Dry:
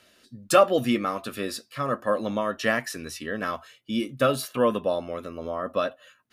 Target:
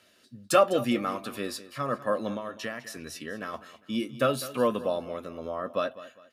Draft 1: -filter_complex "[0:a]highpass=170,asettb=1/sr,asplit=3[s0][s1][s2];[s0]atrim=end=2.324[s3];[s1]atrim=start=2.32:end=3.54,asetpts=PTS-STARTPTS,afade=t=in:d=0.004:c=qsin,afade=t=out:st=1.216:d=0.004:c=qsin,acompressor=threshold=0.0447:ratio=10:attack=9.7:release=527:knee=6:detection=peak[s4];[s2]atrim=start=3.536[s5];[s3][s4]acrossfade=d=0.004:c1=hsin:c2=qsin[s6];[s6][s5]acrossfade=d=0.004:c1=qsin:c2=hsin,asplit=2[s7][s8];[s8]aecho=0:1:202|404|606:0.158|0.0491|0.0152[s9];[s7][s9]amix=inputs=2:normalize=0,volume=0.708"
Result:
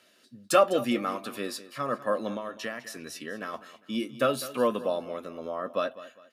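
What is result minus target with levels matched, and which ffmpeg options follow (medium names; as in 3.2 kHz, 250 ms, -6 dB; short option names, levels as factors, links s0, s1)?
125 Hz band -4.0 dB
-filter_complex "[0:a]highpass=72,asettb=1/sr,asplit=3[s0][s1][s2];[s0]atrim=end=2.324[s3];[s1]atrim=start=2.32:end=3.54,asetpts=PTS-STARTPTS,afade=t=in:d=0.004:c=qsin,afade=t=out:st=1.216:d=0.004:c=qsin,acompressor=threshold=0.0447:ratio=10:attack=9.7:release=527:knee=6:detection=peak[s4];[s2]atrim=start=3.536[s5];[s3][s4]acrossfade=d=0.004:c1=hsin:c2=qsin[s6];[s6][s5]acrossfade=d=0.004:c1=qsin:c2=hsin,asplit=2[s7][s8];[s8]aecho=0:1:202|404|606:0.158|0.0491|0.0152[s9];[s7][s9]amix=inputs=2:normalize=0,volume=0.708"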